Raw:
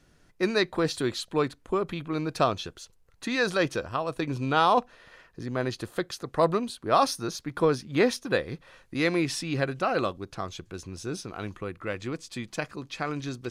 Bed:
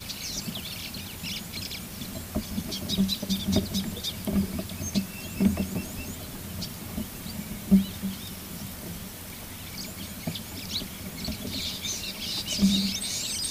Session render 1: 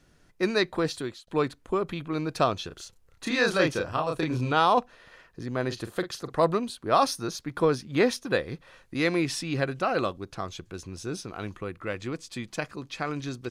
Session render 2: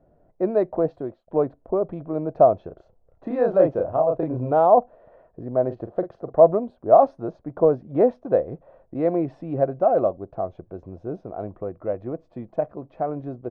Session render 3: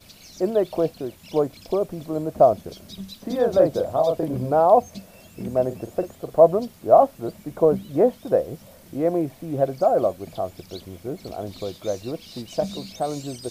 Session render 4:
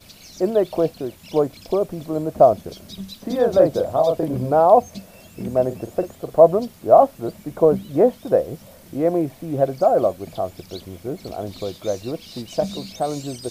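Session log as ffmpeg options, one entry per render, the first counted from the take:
ffmpeg -i in.wav -filter_complex "[0:a]asplit=3[link_01][link_02][link_03];[link_01]afade=type=out:start_time=2.7:duration=0.02[link_04];[link_02]asplit=2[link_05][link_06];[link_06]adelay=32,volume=-2dB[link_07];[link_05][link_07]amix=inputs=2:normalize=0,afade=type=in:start_time=2.7:duration=0.02,afade=type=out:start_time=4.51:duration=0.02[link_08];[link_03]afade=type=in:start_time=4.51:duration=0.02[link_09];[link_04][link_08][link_09]amix=inputs=3:normalize=0,asettb=1/sr,asplit=3[link_10][link_11][link_12];[link_10]atrim=end=5.664[link_13];[link_11]atrim=start=5.66:end=6.42,asetpts=PTS-STARTPTS,afade=type=in:duration=0.004:curve=qsin,afade=type=out:start_time=0.756:duration=0.004:curve=qsin,asplit=2[link_14][link_15];[link_15]adelay=44,volume=-11dB[link_16];[link_14][link_16]amix=inputs=2:normalize=0,atrim=end_sample=33516[link_17];[link_12]atrim=start=6.416[link_18];[link_13][link_17]acrossfade=duration=0.004:curve1=hsin:curve2=qsin[link_19];[link_19][link_18]acrossfade=duration=0.004:curve1=qsin:curve2=hsin,asplit=2[link_20][link_21];[link_20]atrim=end=1.27,asetpts=PTS-STARTPTS,afade=type=out:start_time=0.65:duration=0.62:curve=qsin[link_22];[link_21]atrim=start=1.27,asetpts=PTS-STARTPTS,afade=type=in:duration=0.004:curve=hsin[link_23];[link_22][link_23]concat=n=2:v=0:a=1" out.wav
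ffmpeg -i in.wav -af "lowpass=frequency=650:width_type=q:width=4.9" out.wav
ffmpeg -i in.wav -i bed.wav -filter_complex "[1:a]volume=-11.5dB[link_01];[0:a][link_01]amix=inputs=2:normalize=0" out.wav
ffmpeg -i in.wav -af "volume=2.5dB,alimiter=limit=-1dB:level=0:latency=1" out.wav

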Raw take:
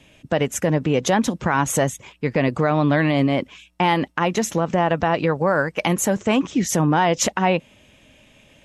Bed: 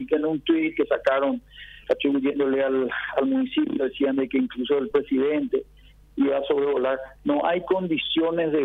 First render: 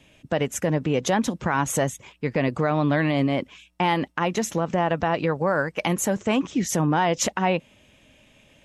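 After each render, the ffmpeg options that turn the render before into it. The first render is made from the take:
ffmpeg -i in.wav -af "volume=-3.5dB" out.wav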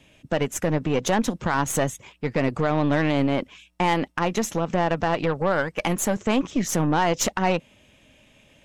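ffmpeg -i in.wav -af "aeval=exprs='0.355*(cos(1*acos(clip(val(0)/0.355,-1,1)))-cos(1*PI/2))+0.0282*(cos(6*acos(clip(val(0)/0.355,-1,1)))-cos(6*PI/2))':channel_layout=same" out.wav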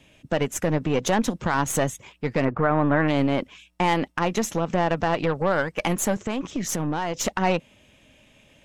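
ffmpeg -i in.wav -filter_complex "[0:a]asplit=3[link_01][link_02][link_03];[link_01]afade=type=out:start_time=2.44:duration=0.02[link_04];[link_02]lowpass=frequency=1500:width_type=q:width=1.7,afade=type=in:start_time=2.44:duration=0.02,afade=type=out:start_time=3.07:duration=0.02[link_05];[link_03]afade=type=in:start_time=3.07:duration=0.02[link_06];[link_04][link_05][link_06]amix=inputs=3:normalize=0,asettb=1/sr,asplit=3[link_07][link_08][link_09];[link_07]atrim=end=6.144[link_10];[link_08]atrim=start=6.14:end=7.27,asetpts=PTS-STARTPTS,afade=type=in:duration=0.004:curve=qsin,afade=type=out:start_time=1.126:duration=0.004:curve=qsin,acompressor=threshold=-22dB:ratio=5:attack=3.2:release=140:knee=1:detection=peak[link_11];[link_09]atrim=start=7.266[link_12];[link_10][link_11]acrossfade=duration=0.004:curve1=hsin:curve2=qsin[link_13];[link_13][link_12]acrossfade=duration=0.004:curve1=qsin:curve2=hsin" out.wav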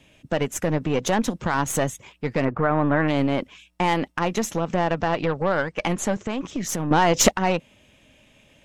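ffmpeg -i in.wav -filter_complex "[0:a]asettb=1/sr,asplit=3[link_01][link_02][link_03];[link_01]atrim=end=4.904[link_04];[link_02]atrim=start=4.9:end=6.38,asetpts=PTS-STARTPTS,afade=type=in:duration=0.004:curve=qsin,afade=type=out:start_time=1.476:duration=0.004:curve=qsin,lowpass=7200[link_05];[link_03]atrim=start=6.376[link_06];[link_04][link_05]acrossfade=duration=0.004:curve1=hsin:curve2=qsin[link_07];[link_07][link_06]acrossfade=duration=0.004:curve1=qsin:curve2=hsin,asplit=3[link_08][link_09][link_10];[link_08]atrim=end=6.912[link_11];[link_09]atrim=start=6.908:end=7.312,asetpts=PTS-STARTPTS,volume=9.5dB[link_12];[link_10]atrim=start=7.308[link_13];[link_11][link_12]acrossfade=duration=0.004:curve1=hsin:curve2=hsin[link_14];[link_14][link_13]acrossfade=duration=0.004:curve1=hsin:curve2=hsin" out.wav

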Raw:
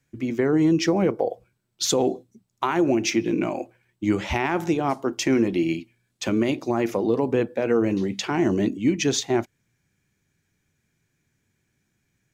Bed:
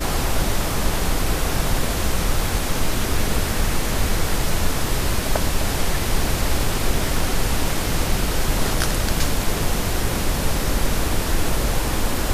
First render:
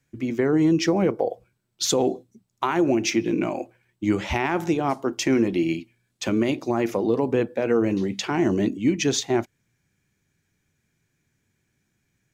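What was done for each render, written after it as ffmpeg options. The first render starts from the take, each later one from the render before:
ffmpeg -i in.wav -af anull out.wav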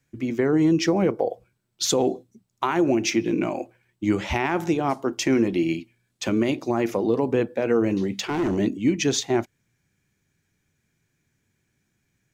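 ffmpeg -i in.wav -filter_complex "[0:a]asettb=1/sr,asplit=3[link_01][link_02][link_03];[link_01]atrim=end=8.154[link_04];[link_02]atrim=start=8.15:end=8.58,asetpts=PTS-STARTPTS,afade=type=in:duration=0.004:curve=qsin,afade=type=out:start_time=0.426:duration=0.004:curve=qsin,asoftclip=type=hard:threshold=-20dB[link_05];[link_03]atrim=start=8.576[link_06];[link_04][link_05]acrossfade=duration=0.004:curve1=hsin:curve2=qsin[link_07];[link_07][link_06]acrossfade=duration=0.004:curve1=qsin:curve2=hsin" out.wav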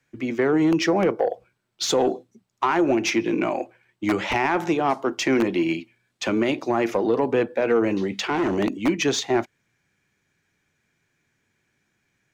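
ffmpeg -i in.wav -filter_complex "[0:a]acrossover=split=200[link_01][link_02];[link_01]aeval=exprs='(mod(13.3*val(0)+1,2)-1)/13.3':channel_layout=same[link_03];[link_03][link_02]amix=inputs=2:normalize=0,asplit=2[link_04][link_05];[link_05]highpass=frequency=720:poles=1,volume=12dB,asoftclip=type=tanh:threshold=-9dB[link_06];[link_04][link_06]amix=inputs=2:normalize=0,lowpass=frequency=2600:poles=1,volume=-6dB" out.wav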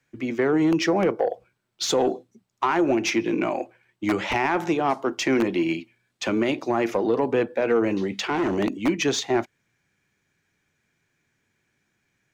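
ffmpeg -i in.wav -af "volume=-1dB" out.wav

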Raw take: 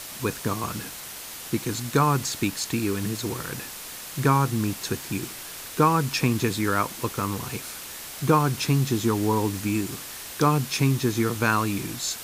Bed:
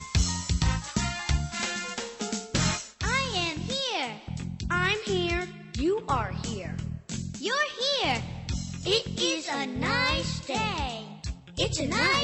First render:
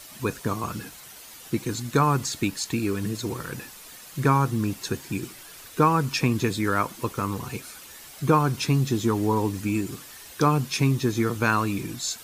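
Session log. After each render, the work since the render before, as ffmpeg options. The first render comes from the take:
ffmpeg -i in.wav -af "afftdn=noise_reduction=9:noise_floor=-39" out.wav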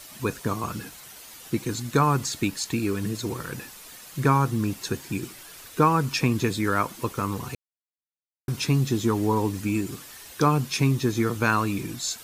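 ffmpeg -i in.wav -filter_complex "[0:a]asplit=3[link_01][link_02][link_03];[link_01]atrim=end=7.55,asetpts=PTS-STARTPTS,afade=type=out:start_time=7.546:duration=0.004:curve=hsin[link_04];[link_02]atrim=start=7.55:end=8.48,asetpts=PTS-STARTPTS,volume=0[link_05];[link_03]atrim=start=8.48,asetpts=PTS-STARTPTS,afade=type=in:duration=0.004:curve=hsin[link_06];[link_04][link_05][link_06]concat=n=3:v=0:a=1" out.wav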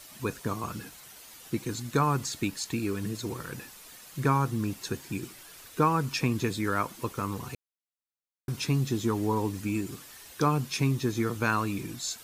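ffmpeg -i in.wav -af "volume=-4.5dB" out.wav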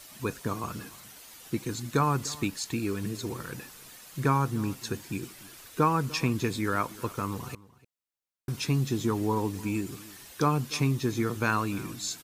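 ffmpeg -i in.wav -filter_complex "[0:a]asplit=2[link_01][link_02];[link_02]adelay=297.4,volume=-20dB,highshelf=frequency=4000:gain=-6.69[link_03];[link_01][link_03]amix=inputs=2:normalize=0" out.wav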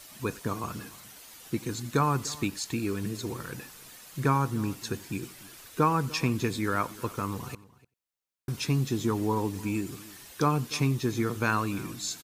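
ffmpeg -i in.wav -af "aecho=1:1:91:0.0708" out.wav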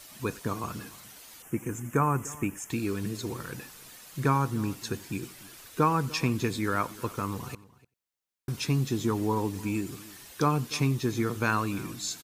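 ffmpeg -i in.wav -filter_complex "[0:a]asettb=1/sr,asplit=3[link_01][link_02][link_03];[link_01]atrim=end=1.424[link_04];[link_02]atrim=start=1.42:end=2.7,asetpts=PTS-STARTPTS,afade=type=in:duration=0.004:curve=qsin,afade=type=out:start_time=1.276:duration=0.004:curve=qsin,asuperstop=centerf=4200:order=4:qfactor=1[link_05];[link_03]atrim=start=2.696[link_06];[link_04][link_05]acrossfade=duration=0.004:curve1=hsin:curve2=qsin[link_07];[link_07][link_06]acrossfade=duration=0.004:curve1=qsin:curve2=hsin" out.wav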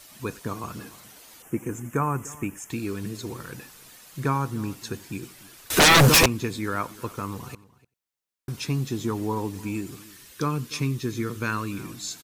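ffmpeg -i in.wav -filter_complex "[0:a]asettb=1/sr,asplit=3[link_01][link_02][link_03];[link_01]atrim=end=0.774[link_04];[link_02]atrim=start=0.77:end=1.89,asetpts=PTS-STARTPTS,afade=type=in:duration=0.004:curve=qsin,afade=type=out:start_time=1.116:duration=0.004:curve=qsin,equalizer=frequency=440:width_type=o:width=2.3:gain=4[link_05];[link_03]atrim=start=1.886[link_06];[link_04][link_05]acrossfade=duration=0.004:curve1=hsin:curve2=qsin[link_07];[link_07][link_06]acrossfade=duration=0.004:curve1=qsin:curve2=hsin,asettb=1/sr,asplit=3[link_08][link_09][link_10];[link_08]atrim=end=5.704[link_11];[link_09]atrim=start=5.7:end=6.26,asetpts=PTS-STARTPTS,afade=type=in:duration=0.004:curve=qsin,afade=type=out:start_time=0.556:duration=0.004:curve=qsin,aeval=exprs='0.282*sin(PI/2*8.91*val(0)/0.282)':channel_layout=same[link_12];[link_10]atrim=start=6.256[link_13];[link_11][link_12]acrossfade=duration=0.004:curve1=hsin:curve2=qsin[link_14];[link_14][link_13]acrossfade=duration=0.004:curve1=qsin:curve2=hsin,asettb=1/sr,asplit=3[link_15][link_16][link_17];[link_15]atrim=end=10.044[link_18];[link_16]atrim=start=10.04:end=11.8,asetpts=PTS-STARTPTS,afade=type=in:duration=0.004:curve=qsin,afade=type=out:start_time=1.756:duration=0.004:curve=qsin,equalizer=frequency=750:width=2.3:gain=-9.5[link_19];[link_17]atrim=start=11.796[link_20];[link_18][link_19]acrossfade=duration=0.004:curve1=hsin:curve2=qsin[link_21];[link_21][link_20]acrossfade=duration=0.004:curve1=qsin:curve2=hsin" out.wav

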